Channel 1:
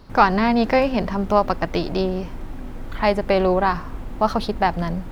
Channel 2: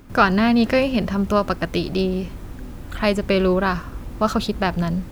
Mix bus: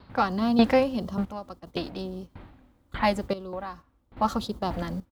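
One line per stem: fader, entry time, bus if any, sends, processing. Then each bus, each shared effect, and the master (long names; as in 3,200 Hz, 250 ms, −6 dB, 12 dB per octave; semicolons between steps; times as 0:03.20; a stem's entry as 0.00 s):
+2.5 dB, 0.00 s, no send, Butterworth low-pass 4,500 Hz 48 dB per octave; parametric band 360 Hz −5 dB 1.4 octaves; tremolo with a ramp in dB decaying 1.7 Hz, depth 31 dB
−7.0 dB, 3.5 ms, no send, noise gate −25 dBFS, range −14 dB; flat-topped bell 2,000 Hz −15.5 dB 1 octave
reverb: not used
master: high-pass filter 64 Hz 12 dB per octave; sample-and-hold tremolo 2.4 Hz, depth 80%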